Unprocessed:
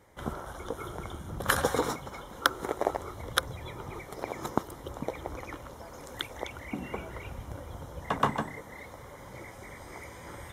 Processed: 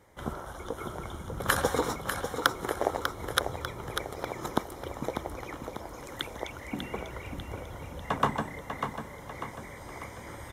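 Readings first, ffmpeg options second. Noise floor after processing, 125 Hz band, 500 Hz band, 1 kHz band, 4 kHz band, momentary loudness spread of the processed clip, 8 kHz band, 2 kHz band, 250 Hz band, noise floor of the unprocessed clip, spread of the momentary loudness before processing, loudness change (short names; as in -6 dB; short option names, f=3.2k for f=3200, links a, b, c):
-45 dBFS, +1.0 dB, +1.0 dB, +1.0 dB, +1.0 dB, 13 LU, +1.0 dB, +1.0 dB, +1.0 dB, -48 dBFS, 16 LU, +0.5 dB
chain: -af "aecho=1:1:595|1190|1785|2380|2975|3570:0.447|0.219|0.107|0.0526|0.0258|0.0126"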